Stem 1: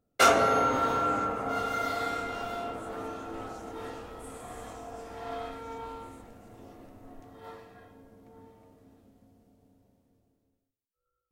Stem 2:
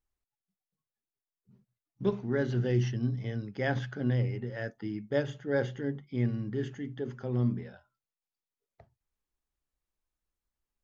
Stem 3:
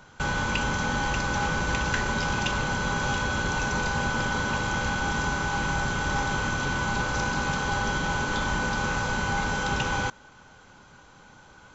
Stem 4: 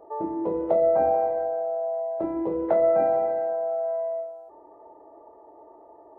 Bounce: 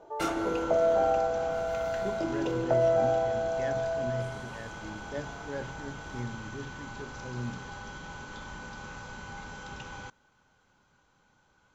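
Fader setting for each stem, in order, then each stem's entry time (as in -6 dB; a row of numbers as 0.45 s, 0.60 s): -13.0 dB, -8.5 dB, -15.5 dB, -4.0 dB; 0.00 s, 0.00 s, 0.00 s, 0.00 s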